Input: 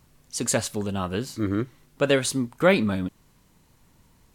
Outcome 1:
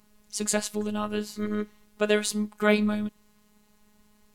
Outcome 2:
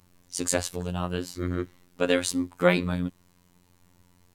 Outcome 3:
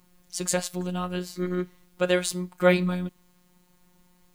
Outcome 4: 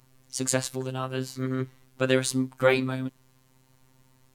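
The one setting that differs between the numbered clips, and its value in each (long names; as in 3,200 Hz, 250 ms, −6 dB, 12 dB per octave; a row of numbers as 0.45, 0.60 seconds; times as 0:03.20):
phases set to zero, frequency: 210, 89, 180, 130 Hertz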